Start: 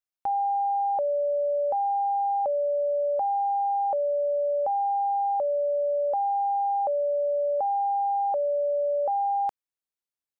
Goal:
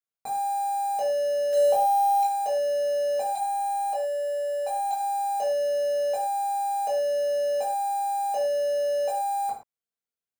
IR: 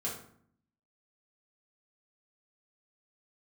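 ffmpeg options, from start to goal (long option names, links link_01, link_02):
-filter_complex "[0:a]asplit=3[link_01][link_02][link_03];[link_01]afade=type=out:start_time=1.52:duration=0.02[link_04];[link_02]acontrast=69,afade=type=in:start_time=1.52:duration=0.02,afade=type=out:start_time=2.22:duration=0.02[link_05];[link_03]afade=type=in:start_time=2.22:duration=0.02[link_06];[link_04][link_05][link_06]amix=inputs=3:normalize=0,asettb=1/sr,asplit=3[link_07][link_08][link_09];[link_07]atrim=end=3.354[link_10];[link_08]atrim=start=3.35:end=4.91,asetpts=PTS-STARTPTS,afade=type=in:duration=0.004:curve=qsin,afade=type=out:start_time=1.556:duration=0.004:curve=qsin,highpass=frequency=520:width=0.5412,highpass=frequency=520:width=1.3066[link_11];[link_09]atrim=start=4.906[link_12];[link_10][link_11]acrossfade=duration=0.004:curve1=hsin:curve2=qsin[link_13];[link_13][link_12]acrossfade=duration=0.004:curve1=qsin:curve2=hsin,acrusher=bits=3:mode=log:mix=0:aa=0.000001[link_14];[1:a]atrim=start_sample=2205,atrim=end_sample=6174[link_15];[link_14][link_15]afir=irnorm=-1:irlink=0,volume=-4.5dB"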